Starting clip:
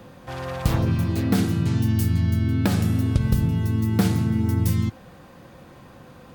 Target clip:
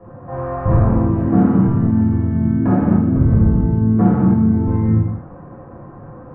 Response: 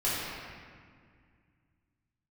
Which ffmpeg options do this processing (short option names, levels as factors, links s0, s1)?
-filter_complex "[0:a]lowpass=f=1300:w=0.5412,lowpass=f=1300:w=1.3066[s0];[1:a]atrim=start_sample=2205,afade=t=out:st=0.37:d=0.01,atrim=end_sample=16758[s1];[s0][s1]afir=irnorm=-1:irlink=0,volume=0.891"